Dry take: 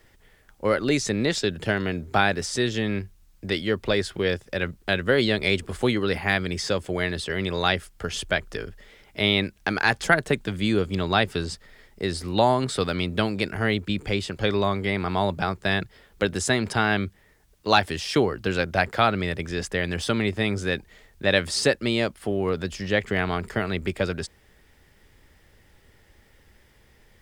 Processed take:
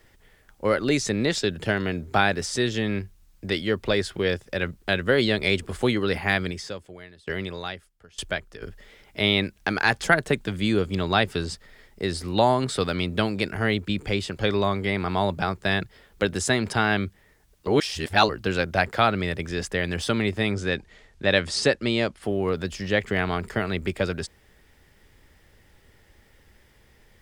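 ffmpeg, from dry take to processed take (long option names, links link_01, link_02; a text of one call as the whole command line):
ffmpeg -i in.wav -filter_complex "[0:a]asplit=3[link_01][link_02][link_03];[link_01]afade=type=out:start_time=6.5:duration=0.02[link_04];[link_02]aeval=exprs='val(0)*pow(10,-25*if(lt(mod(1.1*n/s,1),2*abs(1.1)/1000),1-mod(1.1*n/s,1)/(2*abs(1.1)/1000),(mod(1.1*n/s,1)-2*abs(1.1)/1000)/(1-2*abs(1.1)/1000))/20)':channel_layout=same,afade=type=in:start_time=6.5:duration=0.02,afade=type=out:start_time=8.61:duration=0.02[link_05];[link_03]afade=type=in:start_time=8.61:duration=0.02[link_06];[link_04][link_05][link_06]amix=inputs=3:normalize=0,asettb=1/sr,asplit=3[link_07][link_08][link_09];[link_07]atrim=end=20.524[link_10];[link_08]atrim=start=20.52:end=22.23,asetpts=PTS-STARTPTS,afade=type=in:duration=0.004:curve=qsin,afade=type=out:start_time=1.706:duration=0.004:curve=qsin,lowpass=7900[link_11];[link_09]atrim=start=22.226[link_12];[link_10][link_11]acrossfade=duration=0.004:curve1=hsin:curve2=qsin[link_13];[link_13][link_12]acrossfade=duration=0.004:curve1=qsin:curve2=hsin,asplit=3[link_14][link_15][link_16];[link_14]atrim=end=17.672[link_17];[link_15]atrim=start=17.668:end=18.292,asetpts=PTS-STARTPTS,areverse[link_18];[link_16]atrim=start=18.288[link_19];[link_17][link_18]acrossfade=duration=0.004:curve1=hsin:curve2=hsin[link_20];[link_20][link_19]acrossfade=duration=0.004:curve1=hsin:curve2=hsin" out.wav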